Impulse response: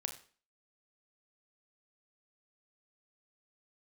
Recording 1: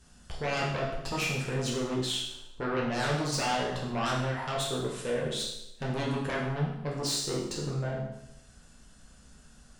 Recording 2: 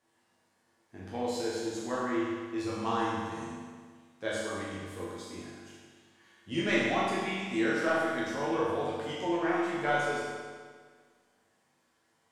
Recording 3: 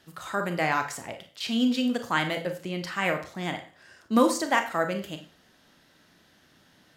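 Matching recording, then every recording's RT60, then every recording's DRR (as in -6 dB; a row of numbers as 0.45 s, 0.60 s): 3; 0.85 s, 1.7 s, 0.40 s; -4.0 dB, -8.5 dB, 6.0 dB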